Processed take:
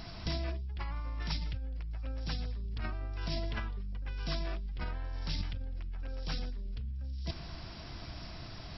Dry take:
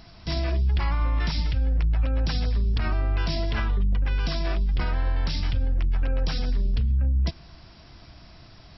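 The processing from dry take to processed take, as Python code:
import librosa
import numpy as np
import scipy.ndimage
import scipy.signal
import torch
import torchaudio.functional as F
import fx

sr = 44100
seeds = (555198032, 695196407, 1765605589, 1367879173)

p1 = fx.over_compress(x, sr, threshold_db=-31.0, ratio=-1.0)
p2 = p1 + fx.echo_wet_highpass(p1, sr, ms=956, feedback_pct=66, hz=4100.0, wet_db=-13.5, dry=0)
y = p2 * 10.0 ** (-5.0 / 20.0)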